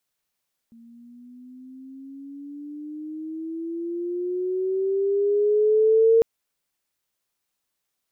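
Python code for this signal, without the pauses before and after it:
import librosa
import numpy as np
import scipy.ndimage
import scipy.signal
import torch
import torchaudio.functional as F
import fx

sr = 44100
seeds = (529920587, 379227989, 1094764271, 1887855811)

y = fx.riser_tone(sr, length_s=5.5, level_db=-12.5, wave='sine', hz=229.0, rise_st=12.0, swell_db=33)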